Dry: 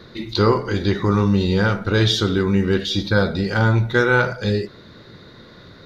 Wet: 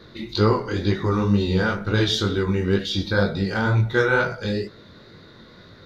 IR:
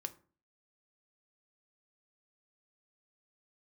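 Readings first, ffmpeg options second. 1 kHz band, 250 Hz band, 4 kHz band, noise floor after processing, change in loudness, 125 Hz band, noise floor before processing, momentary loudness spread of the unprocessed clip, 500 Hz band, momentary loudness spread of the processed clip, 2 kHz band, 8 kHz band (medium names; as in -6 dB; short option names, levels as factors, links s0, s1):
-3.0 dB, -3.0 dB, -3.0 dB, -47 dBFS, -3.0 dB, -3.0 dB, -45 dBFS, 5 LU, -2.5 dB, 6 LU, -3.0 dB, no reading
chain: -af "flanger=delay=18.5:depth=4.6:speed=2.1"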